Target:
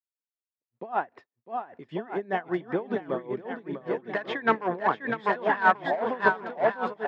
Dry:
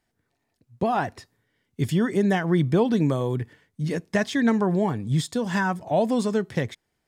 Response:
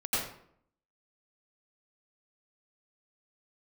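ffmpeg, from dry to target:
-filter_complex "[0:a]aemphasis=mode=reproduction:type=75fm,agate=range=0.0224:threshold=0.00562:ratio=3:detection=peak,asettb=1/sr,asplit=3[s0][s1][s2];[s0]atrim=end=4.004[s3];[s1]atrim=start=4:end=6.29,asetpts=PTS-STARTPTS,afade=t=in:d=0.004:c=qsin,afade=t=out:st=2.286:d=0.004:c=qsin,equalizer=f=1400:t=o:w=2.7:g=12.5[s4];[s2]atrim=start=6.286[s5];[s3][s4]acrossfade=d=0.004:c1=hsin:c2=qsin[s6];[s6][s5]acrossfade=d=0.004:c1=qsin:c2=hsin,asoftclip=type=hard:threshold=0.316,highpass=400,lowpass=2600,aecho=1:1:650|1138|1503|1777|1983:0.631|0.398|0.251|0.158|0.1,aeval=exprs='val(0)*pow(10,-20*(0.5-0.5*cos(2*PI*5.1*n/s))/20)':c=same"

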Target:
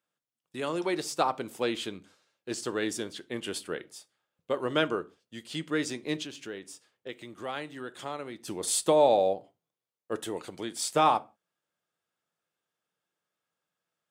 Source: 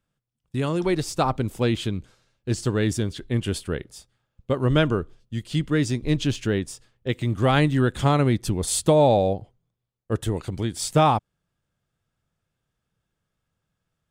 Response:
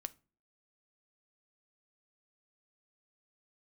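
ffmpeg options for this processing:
-filter_complex "[1:a]atrim=start_sample=2205,afade=t=out:st=0.23:d=0.01,atrim=end_sample=10584[s0];[0:a][s0]afir=irnorm=-1:irlink=0,asettb=1/sr,asplit=3[s1][s2][s3];[s1]atrim=end=6.224[s4];[s2]atrim=start=6.22:end=8.48,asetpts=PTS-STARTPTS,afade=t=in:d=0.004:c=qsin,afade=t=out:st=2.256:d=0.004:c=qsin,acompressor=threshold=0.0126:ratio=2[s5];[s3]atrim=start=8.476[s6];[s4][s5]acrossfade=d=0.004:c1=hsin:c2=qsin[s7];[s7][s6]acrossfade=d=0.004:c1=qsin:c2=hsin,highpass=380"

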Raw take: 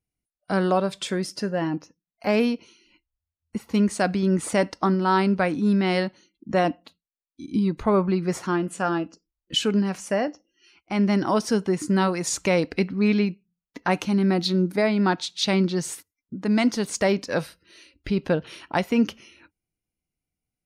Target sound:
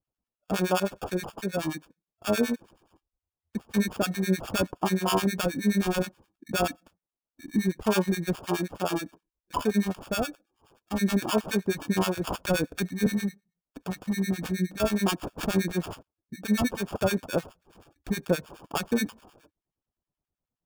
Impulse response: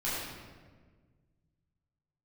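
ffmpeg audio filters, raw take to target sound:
-filter_complex "[0:a]asettb=1/sr,asplit=3[s0][s1][s2];[s0]atrim=end=13.064[s3];[s1]atrim=start=13.06:end=14.8,asetpts=PTS-STARTPTS,afade=t=in:d=0.004:c=qsin,afade=t=out:st=1.736:d=0.004:c=qsin,acrossover=split=260|3000[s4][s5][s6];[s5]acompressor=threshold=0.0178:ratio=10[s7];[s4][s7][s6]amix=inputs=3:normalize=0[s8];[s2]atrim=start=14.796[s9];[s3][s8]acrossfade=d=0.004:c1=hsin:c2=qsin[s10];[s10][s9]acrossfade=d=0.004:c1=qsin:c2=hsin,acrusher=samples=22:mix=1:aa=0.000001,acrossover=split=1100[s11][s12];[s11]aeval=exprs='val(0)*(1-1/2+1/2*cos(2*PI*9.5*n/s))':c=same[s13];[s12]aeval=exprs='val(0)*(1-1/2-1/2*cos(2*PI*9.5*n/s))':c=same[s14];[s13][s14]amix=inputs=2:normalize=0"

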